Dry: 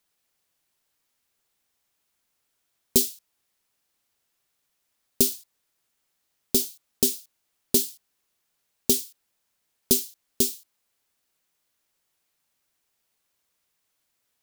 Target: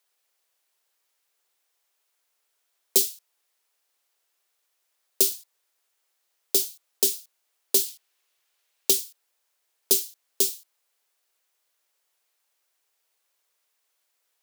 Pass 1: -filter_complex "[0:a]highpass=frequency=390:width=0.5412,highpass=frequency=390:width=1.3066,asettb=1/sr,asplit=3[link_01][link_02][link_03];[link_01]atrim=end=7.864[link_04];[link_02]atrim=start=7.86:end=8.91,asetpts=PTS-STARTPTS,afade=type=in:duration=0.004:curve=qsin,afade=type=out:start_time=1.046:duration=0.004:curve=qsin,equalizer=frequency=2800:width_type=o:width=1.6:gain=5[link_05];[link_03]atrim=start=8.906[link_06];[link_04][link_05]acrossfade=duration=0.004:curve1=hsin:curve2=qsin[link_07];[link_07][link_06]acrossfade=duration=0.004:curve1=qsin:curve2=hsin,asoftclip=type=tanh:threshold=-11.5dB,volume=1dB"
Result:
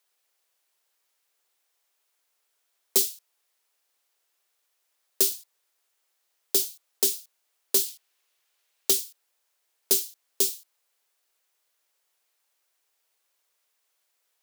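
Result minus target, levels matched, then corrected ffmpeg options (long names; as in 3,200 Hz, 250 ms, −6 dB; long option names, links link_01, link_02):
soft clipping: distortion +15 dB
-filter_complex "[0:a]highpass=frequency=390:width=0.5412,highpass=frequency=390:width=1.3066,asettb=1/sr,asplit=3[link_01][link_02][link_03];[link_01]atrim=end=7.864[link_04];[link_02]atrim=start=7.86:end=8.91,asetpts=PTS-STARTPTS,afade=type=in:duration=0.004:curve=qsin,afade=type=out:start_time=1.046:duration=0.004:curve=qsin,equalizer=frequency=2800:width_type=o:width=1.6:gain=5[link_05];[link_03]atrim=start=8.906[link_06];[link_04][link_05]acrossfade=duration=0.004:curve1=hsin:curve2=qsin[link_07];[link_07][link_06]acrossfade=duration=0.004:curve1=qsin:curve2=hsin,asoftclip=type=tanh:threshold=-1.5dB,volume=1dB"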